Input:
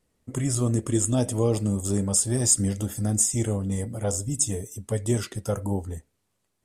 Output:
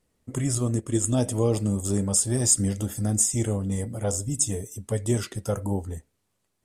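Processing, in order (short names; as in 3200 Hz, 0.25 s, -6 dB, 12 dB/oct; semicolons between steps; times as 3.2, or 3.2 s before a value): 0.58–1.04 upward expander 1.5:1, over -34 dBFS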